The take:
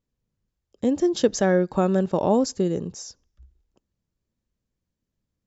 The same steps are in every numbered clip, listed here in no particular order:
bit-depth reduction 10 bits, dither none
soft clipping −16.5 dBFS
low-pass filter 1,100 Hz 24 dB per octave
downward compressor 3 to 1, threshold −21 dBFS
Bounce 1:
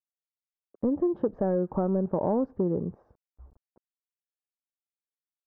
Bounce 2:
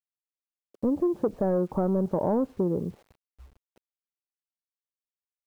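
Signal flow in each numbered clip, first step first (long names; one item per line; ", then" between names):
bit-depth reduction, then downward compressor, then soft clipping, then low-pass filter
soft clipping, then low-pass filter, then bit-depth reduction, then downward compressor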